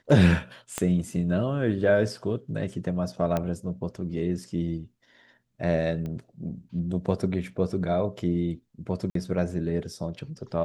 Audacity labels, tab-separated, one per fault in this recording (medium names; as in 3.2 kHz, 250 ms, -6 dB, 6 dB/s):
0.780000	0.780000	pop -13 dBFS
3.370000	3.370000	pop -14 dBFS
6.060000	6.060000	pop -24 dBFS
9.100000	9.150000	dropout 53 ms